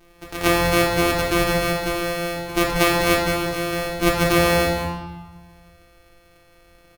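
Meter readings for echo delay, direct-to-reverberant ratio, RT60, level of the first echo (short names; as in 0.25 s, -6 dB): 0.193 s, -3.0 dB, 1.3 s, -8.5 dB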